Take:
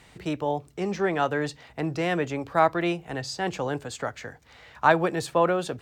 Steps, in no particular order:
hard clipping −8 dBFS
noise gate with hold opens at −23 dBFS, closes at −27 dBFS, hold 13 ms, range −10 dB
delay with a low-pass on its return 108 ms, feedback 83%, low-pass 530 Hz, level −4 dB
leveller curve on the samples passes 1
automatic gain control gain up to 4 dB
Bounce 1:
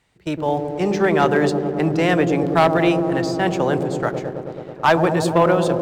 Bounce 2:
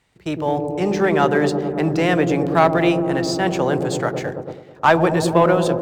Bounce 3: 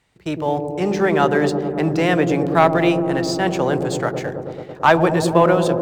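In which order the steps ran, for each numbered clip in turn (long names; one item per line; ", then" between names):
noise gate with hold, then automatic gain control, then delay with a low-pass on its return, then leveller curve on the samples, then hard clipping
hard clipping, then leveller curve on the samples, then delay with a low-pass on its return, then noise gate with hold, then automatic gain control
leveller curve on the samples, then hard clipping, then automatic gain control, then delay with a low-pass on its return, then noise gate with hold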